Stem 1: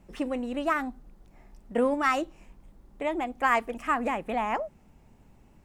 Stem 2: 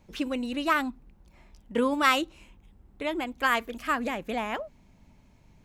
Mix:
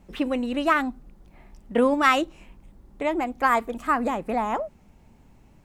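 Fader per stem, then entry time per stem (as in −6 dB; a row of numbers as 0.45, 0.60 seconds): +1.5, −4.0 decibels; 0.00, 0.00 seconds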